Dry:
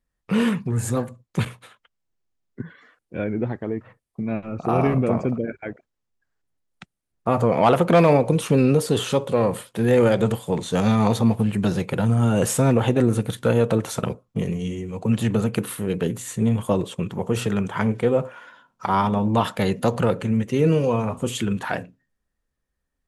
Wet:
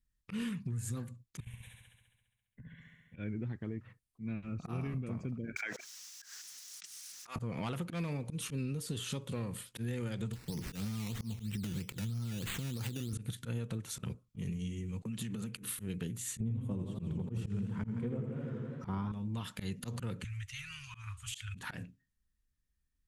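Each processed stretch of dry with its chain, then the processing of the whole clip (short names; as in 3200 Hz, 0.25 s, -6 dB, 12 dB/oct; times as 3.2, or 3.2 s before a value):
1.4–3.16 compressor 12:1, threshold -37 dBFS + fixed phaser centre 1300 Hz, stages 6 + flutter echo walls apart 11.6 m, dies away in 1.3 s
5.56–7.36 HPF 950 Hz + bell 5800 Hz +12.5 dB + fast leveller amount 100%
10.33–13.13 HPF 52 Hz + compressor 10:1, threshold -21 dBFS + decimation with a swept rate 11×, swing 60% 3.1 Hz
15.02–15.63 expander -29 dBFS + compressor 16:1, threshold -24 dBFS + HPF 130 Hz 24 dB/oct
16.4–19.12 tilt shelf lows +9 dB, about 1400 Hz + warbling echo 82 ms, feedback 72%, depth 127 cents, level -6.5 dB
20.24–21.55 inverse Chebyshev band-stop 200–540 Hz, stop band 60 dB + high shelf 9100 Hz -9 dB
whole clip: passive tone stack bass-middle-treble 6-0-2; auto swell 0.124 s; compressor 6:1, threshold -46 dBFS; gain +11 dB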